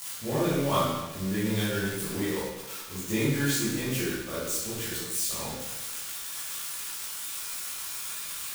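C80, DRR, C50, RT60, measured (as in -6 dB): 2.0 dB, -11.5 dB, -2.0 dB, 1.1 s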